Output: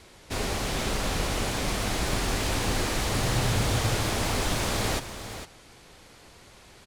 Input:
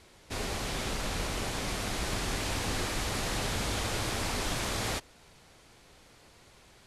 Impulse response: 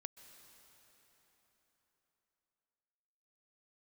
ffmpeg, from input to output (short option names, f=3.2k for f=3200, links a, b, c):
-filter_complex "[0:a]asettb=1/sr,asplit=3[a][b][c];[a]atrim=end=3.134[d];[b]atrim=start=3.13:end=3.94,asetpts=PTS-STARTPTS,afade=t=in:d=0.004:c=qsin,afade=t=out:st=0.806:d=0.004:c=qsin,equalizer=f=120:w=3.9:g=12[e];[c]atrim=start=3.936[f];[d][e]acrossfade=d=0.004:c1=hsin:c2=qsin[g];[g][f]acrossfade=d=0.004:c1=qsin:c2=hsin,acrossover=split=1000[h][i];[i]aeval=exprs='clip(val(0),-1,0.0106)':c=same[j];[h][j]amix=inputs=2:normalize=0,aecho=1:1:456:0.299,volume=5.5dB"